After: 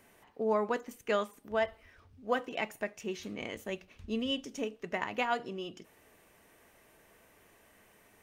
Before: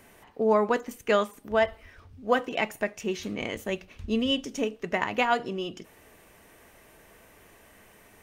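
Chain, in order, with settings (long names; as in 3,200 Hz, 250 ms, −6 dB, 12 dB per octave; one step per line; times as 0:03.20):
low-shelf EQ 81 Hz −5.5 dB
level −7 dB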